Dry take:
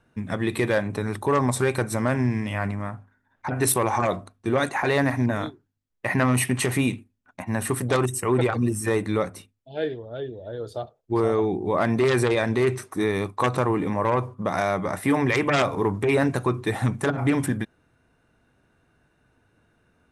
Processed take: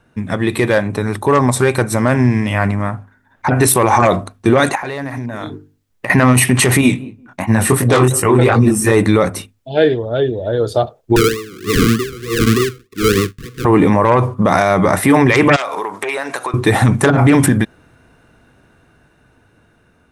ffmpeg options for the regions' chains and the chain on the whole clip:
-filter_complex "[0:a]asettb=1/sr,asplit=3[a][b][c];[a]atrim=end=4.754[d];[b]atrim=start=4.75:end=6.1,asetpts=PTS-STARTPTS,afade=t=in:d=0.004:c=qsin,afade=t=out:st=1.346:d=0.004:c=qsin,bandreject=f=50:t=h:w=6,bandreject=f=100:t=h:w=6,bandreject=f=150:t=h:w=6,bandreject=f=200:t=h:w=6,bandreject=f=250:t=h:w=6,bandreject=f=300:t=h:w=6,bandreject=f=350:t=h:w=6,bandreject=f=400:t=h:w=6,bandreject=f=450:t=h:w=6,acompressor=threshold=-36dB:ratio=12:attack=3.2:release=140:knee=1:detection=peak[e];[c]atrim=start=6.096[f];[d][e]acrossfade=d=0.004:c1=hsin:c2=qsin[g];[g][f]acrossfade=d=0.004:c1=qsin:c2=hsin,asettb=1/sr,asplit=3[h][i][j];[h]atrim=end=6.814[k];[i]atrim=start=6.81:end=8.92,asetpts=PTS-STARTPTS,afade=t=in:d=0.004:c=qsin,afade=t=out:st=2.106:d=0.004:c=qsin,asplit=2[l][m];[m]adelay=186,lowpass=f=880:p=1,volume=-19dB,asplit=2[n][o];[o]adelay=186,lowpass=f=880:p=1,volume=0.18[p];[l][n][p]amix=inputs=3:normalize=0,atrim=end_sample=93051,flanger=delay=17.5:depth=6.4:speed=2.8[q];[j]atrim=start=8.916[r];[k][q]acrossfade=d=0.004:c1=hsin:c2=qsin[s];[s][r]acrossfade=d=0.004:c1=qsin:c2=hsin,asettb=1/sr,asplit=3[t][u][v];[t]atrim=end=11.164[w];[u]atrim=start=11.16:end=13.65,asetpts=PTS-STARTPTS,afade=t=in:d=0.004:c=qsin,afade=t=out:st=2.486:d=0.004:c=qsin,acrusher=samples=39:mix=1:aa=0.000001:lfo=1:lforange=23.4:lforate=3.3,asuperstop=centerf=730:order=20:qfactor=1.2,aeval=exprs='val(0)*pow(10,-26*(0.5-0.5*cos(2*PI*1.5*n/s))/20)':c=same[x];[v]atrim=start=13.646[y];[w][x]acrossfade=d=0.004:c1=hsin:c2=qsin[z];[z][y]acrossfade=d=0.004:c1=qsin:c2=hsin,asettb=1/sr,asplit=3[aa][ab][ac];[aa]atrim=end=15.564[ad];[ab]atrim=start=15.56:end=16.54,asetpts=PTS-STARTPTS,afade=t=in:d=0.004:c=qsin,afade=t=out:st=0.976:d=0.004:c=qsin,highpass=710,acompressor=threshold=-34dB:ratio=8:attack=3.2:release=140:knee=1:detection=peak[ae];[ac]atrim=start=16.536[af];[ad][ae]acrossfade=d=0.004:c1=hsin:c2=qsin[ag];[ag][af]acrossfade=d=0.004:c1=qsin:c2=hsin,dynaudnorm=f=950:g=7:m=11.5dB,alimiter=level_in=9.5dB:limit=-1dB:release=50:level=0:latency=1,volume=-1dB"

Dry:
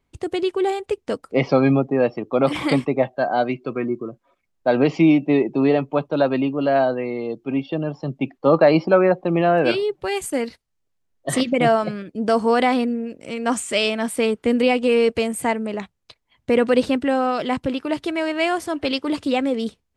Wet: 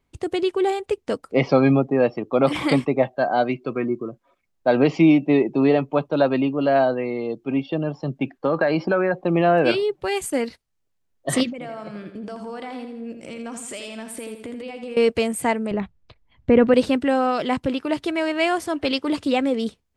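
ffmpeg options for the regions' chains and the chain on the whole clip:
-filter_complex "[0:a]asettb=1/sr,asplit=3[a][b][c];[a]atrim=end=8.164[d];[b]atrim=start=8.16:end=9.14,asetpts=PTS-STARTPTS,afade=t=in:d=0.004:c=qsin,afade=t=out:st=0.976:d=0.004:c=qsin,acompressor=threshold=-16dB:ratio=6:attack=3.2:release=140:knee=1:detection=peak,equalizer=f=1.6k:w=7.3:g=12[e];[c]atrim=start=9.136[f];[d][e]acrossfade=d=0.004:c1=hsin:c2=qsin[g];[g][f]acrossfade=d=0.004:c1=qsin:c2=hsin,asettb=1/sr,asplit=3[h][i][j];[h]atrim=end=11.504[k];[i]atrim=start=11.5:end=14.97,asetpts=PTS-STARTPTS,afade=t=in:d=0.004:c=qsin,afade=t=out:st=3.466:d=0.004:c=qsin,acompressor=threshold=-31dB:ratio=8:attack=3.2:release=140:knee=1:detection=peak,aecho=1:1:82|164|246|328|410:0.398|0.183|0.0842|0.0388|0.0178,atrim=end_sample=153027[l];[j]atrim=start=14.966[m];[k][l]acrossfade=d=0.004:c1=hsin:c2=qsin[n];[n][m]acrossfade=d=0.004:c1=qsin:c2=hsin,asettb=1/sr,asplit=3[o][p][q];[o]atrim=end=15.714[r];[p]atrim=start=15.71:end=16.74,asetpts=PTS-STARTPTS,afade=t=in:d=0.004:c=qsin,afade=t=out:st=1.026:d=0.004:c=qsin,acrossover=split=3600[s][t];[t]acompressor=threshold=-54dB:ratio=4:attack=1:release=60[u];[s][u]amix=inputs=2:normalize=0,aemphasis=mode=reproduction:type=bsi[v];[q]atrim=start=16.736[w];[r][v]acrossfade=d=0.004:c1=hsin:c2=qsin[x];[x][w]acrossfade=d=0.004:c1=qsin:c2=hsin"

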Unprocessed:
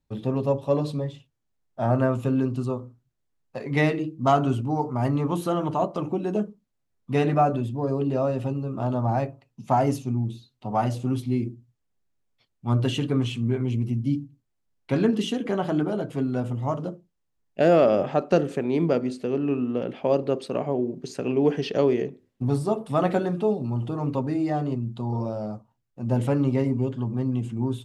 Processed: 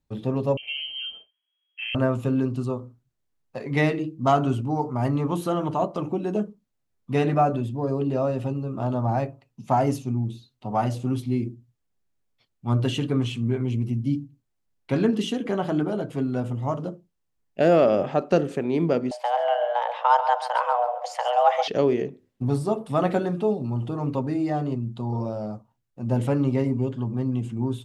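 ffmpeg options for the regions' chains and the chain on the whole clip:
-filter_complex "[0:a]asettb=1/sr,asplit=3[a][b][c];[a]atrim=end=0.574[d];[b]atrim=start=0.57:end=1.95,asetpts=PTS-STARTPTS,afade=t=in:d=0.004:c=qsin,afade=t=out:st=1.376:d=0.004:c=qsin,lowpass=f=2.8k:t=q:w=0.5098,lowpass=f=2.8k:t=q:w=0.6013,lowpass=f=2.8k:t=q:w=0.9,lowpass=f=2.8k:t=q:w=2.563,afreqshift=-3300,acompressor=threshold=-36dB:ratio=2:attack=3.2:release=140:knee=1:detection=peak,asplit=2[e][f];[f]adelay=25,volume=-8dB[g];[e][g]amix=inputs=2:normalize=0,atrim=end_sample=60858[h];[c]atrim=start=1.946[i];[d][h]acrossfade=d=0.004:c1=hsin:c2=qsin[j];[j][i]acrossfade=d=0.004:c1=qsin:c2=hsin,asettb=1/sr,asplit=3[k][l][m];[k]atrim=end=19.114[n];[l]atrim=start=19.11:end=21.68,asetpts=PTS-STARTPTS,afade=t=in:d=0.004:c=qsin,afade=t=out:st=2.566:d=0.004:c=qsin,equalizer=f=1.3k:w=0.59:g=7.5,aecho=1:1:135|270|405:0.282|0.0902|0.0289,atrim=end_sample=113337,afreqshift=360[o];[m]atrim=start=21.676[p];[n][o]acrossfade=d=0.004:c1=hsin:c2=qsin[q];[q][p]acrossfade=d=0.004:c1=qsin:c2=hsin"

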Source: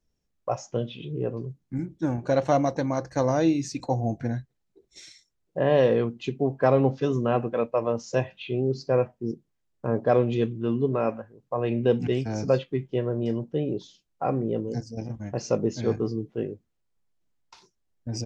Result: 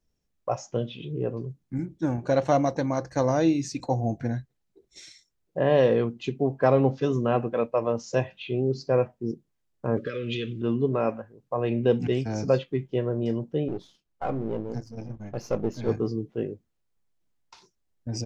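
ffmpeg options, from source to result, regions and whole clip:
-filter_complex "[0:a]asettb=1/sr,asplit=3[a][b][c];[a]atrim=end=9.974[d];[b]atrim=start=9.97:end=10.62,asetpts=PTS-STARTPTS,afade=t=in:d=0.004:c=qsin,afade=t=out:st=0.646:d=0.004:c=qsin,equalizer=f=3.1k:t=o:w=1.7:g=15,acompressor=threshold=-25dB:ratio=12:attack=3.2:release=140:knee=1:detection=peak,asuperstop=centerf=820:order=20:qfactor=1.4[e];[c]atrim=start=10.616[f];[d][e]acrossfade=d=0.004:c1=hsin:c2=qsin[g];[g][f]acrossfade=d=0.004:c1=qsin:c2=hsin,asettb=1/sr,asplit=3[h][i][j];[h]atrim=end=13.684[k];[i]atrim=start=13.68:end=15.89,asetpts=PTS-STARTPTS,afade=t=in:d=0.004:c=qsin,afade=t=out:st=2.206:d=0.004:c=qsin,aeval=exprs='if(lt(val(0),0),0.447*val(0),val(0))':c=same,highshelf=f=4.5k:g=-8,bandreject=f=1.9k:w=30[l];[j]atrim=start=15.886[m];[k][l]acrossfade=d=0.004:c1=hsin:c2=qsin[n];[n][m]acrossfade=d=0.004:c1=qsin:c2=hsin"

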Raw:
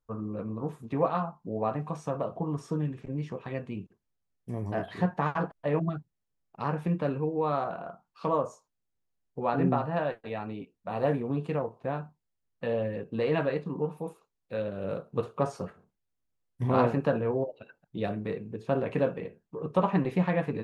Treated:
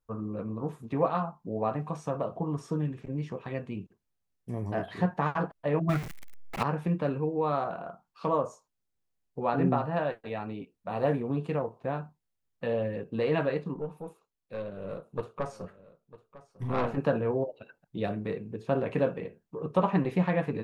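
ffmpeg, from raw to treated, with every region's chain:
-filter_complex "[0:a]asettb=1/sr,asplit=3[a][b][c];[a]atrim=end=5.894[d];[b]atrim=start=5.89:end=6.63,asetpts=PTS-STARTPTS,afade=t=in:d=0.004:c=qsin,afade=t=out:st=0.736:d=0.004:c=qsin,aeval=exprs='val(0)+0.5*0.0112*sgn(val(0))':c=same,equalizer=f=2.1k:t=o:w=0.66:g=11,acontrast=51[e];[c]atrim=start=6.626[f];[d][e]acrossfade=d=0.004:c1=hsin:c2=qsin[g];[g][f]acrossfade=d=0.004:c1=qsin:c2=hsin,asettb=1/sr,asplit=3[h][i][j];[h]atrim=end=13.744[k];[i]atrim=start=13.74:end=16.98,asetpts=PTS-STARTPTS,afade=t=in:d=0.004:c=qsin,afade=t=out:st=3.236:d=0.004:c=qsin,aeval=exprs='(tanh(8.91*val(0)+0.75)-tanh(0.75))/8.91':c=same,aecho=1:1:951:0.126,atrim=end_sample=142884[l];[j]atrim=start=16.976[m];[k][l]acrossfade=d=0.004:c1=hsin:c2=qsin[n];[n][m]acrossfade=d=0.004:c1=qsin:c2=hsin"

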